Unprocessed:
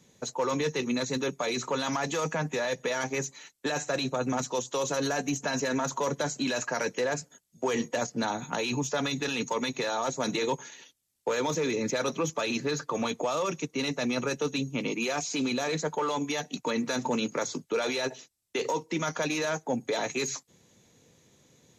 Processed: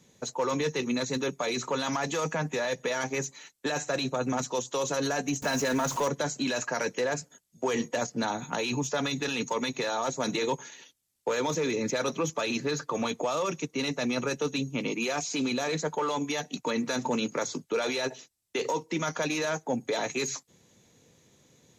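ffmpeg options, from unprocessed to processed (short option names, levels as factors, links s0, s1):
-filter_complex "[0:a]asettb=1/sr,asplit=3[s0][s1][s2];[s0]atrim=end=5.424[s3];[s1]atrim=start=5.42:end=6.08,asetpts=PTS-STARTPTS,afade=t=in:d=0.004:c=qsin,afade=t=out:st=0.656:d=0.004:c=qsin,aeval=exprs='val(0)+0.5*0.0188*sgn(val(0))':c=same[s4];[s2]atrim=start=6.076[s5];[s3][s4]acrossfade=d=0.004:c1=hsin:c2=qsin[s6];[s6][s5]acrossfade=d=0.004:c1=qsin:c2=hsin"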